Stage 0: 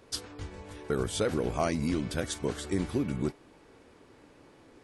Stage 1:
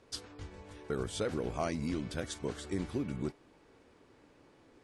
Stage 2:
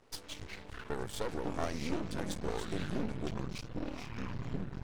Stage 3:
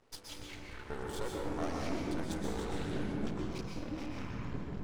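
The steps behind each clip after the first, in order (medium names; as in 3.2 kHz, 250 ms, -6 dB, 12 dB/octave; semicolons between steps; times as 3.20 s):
low-pass 9.4 kHz 12 dB/octave; trim -5.5 dB
ever faster or slower copies 103 ms, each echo -7 st, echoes 3; half-wave rectifier; trim +1.5 dB
plate-style reverb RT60 1.3 s, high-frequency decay 0.55×, pre-delay 110 ms, DRR -1 dB; trim -4 dB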